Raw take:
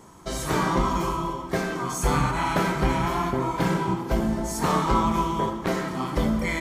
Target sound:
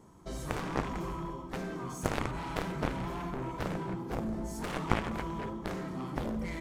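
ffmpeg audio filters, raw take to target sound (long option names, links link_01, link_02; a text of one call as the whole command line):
ffmpeg -i in.wav -af "aeval=exprs='0.355*(cos(1*acos(clip(val(0)/0.355,-1,1)))-cos(1*PI/2))+0.158*(cos(3*acos(clip(val(0)/0.355,-1,1)))-cos(3*PI/2))':channel_layout=same,tiltshelf=frequency=650:gain=4.5" out.wav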